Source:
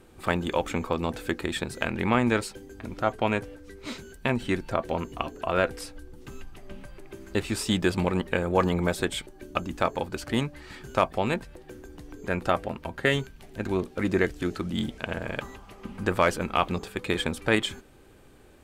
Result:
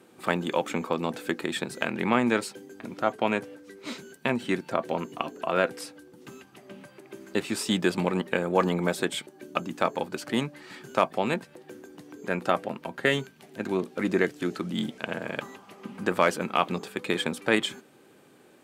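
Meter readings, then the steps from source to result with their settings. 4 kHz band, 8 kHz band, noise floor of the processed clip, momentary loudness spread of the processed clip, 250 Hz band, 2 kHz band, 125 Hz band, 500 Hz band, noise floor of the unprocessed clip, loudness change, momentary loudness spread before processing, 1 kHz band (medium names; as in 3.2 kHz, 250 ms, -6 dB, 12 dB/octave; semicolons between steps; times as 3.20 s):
0.0 dB, 0.0 dB, -56 dBFS, 19 LU, -0.5 dB, 0.0 dB, -4.5 dB, 0.0 dB, -52 dBFS, -0.5 dB, 19 LU, 0.0 dB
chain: high-pass 150 Hz 24 dB/octave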